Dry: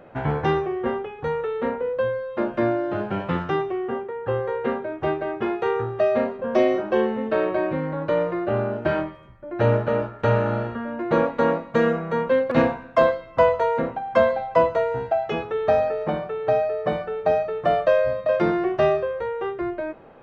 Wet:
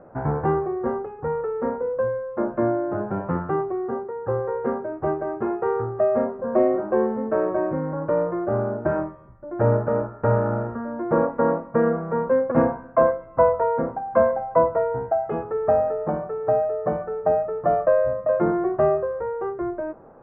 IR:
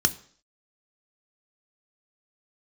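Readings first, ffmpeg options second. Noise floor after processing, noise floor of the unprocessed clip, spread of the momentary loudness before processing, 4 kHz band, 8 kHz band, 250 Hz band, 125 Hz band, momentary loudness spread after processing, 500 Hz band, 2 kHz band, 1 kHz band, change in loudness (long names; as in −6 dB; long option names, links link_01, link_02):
−43 dBFS, −43 dBFS, 7 LU, below −25 dB, can't be measured, 0.0 dB, 0.0 dB, 7 LU, 0.0 dB, −7.0 dB, −0.5 dB, 0.0 dB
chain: -af "lowpass=frequency=1400:width=0.5412,lowpass=frequency=1400:width=1.3066"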